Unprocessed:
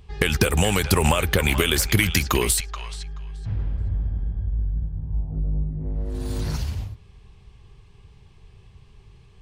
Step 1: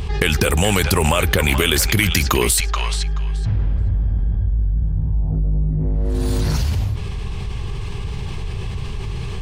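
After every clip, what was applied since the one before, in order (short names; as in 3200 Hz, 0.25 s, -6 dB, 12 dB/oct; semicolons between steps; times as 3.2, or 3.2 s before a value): fast leveller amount 70%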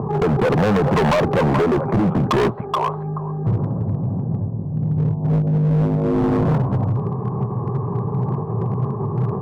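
in parallel at -12 dB: sine folder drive 5 dB, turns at -2 dBFS; on the sum: Chebyshev band-pass 120–1100 Hz, order 4; hard clip -21.5 dBFS, distortion -6 dB; gain +7 dB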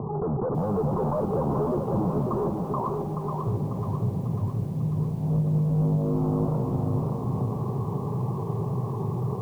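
steep low-pass 1200 Hz 48 dB/oct; limiter -16 dBFS, peak gain reduction 5 dB; lo-fi delay 0.545 s, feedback 55%, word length 8-bit, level -4.5 dB; gain -6.5 dB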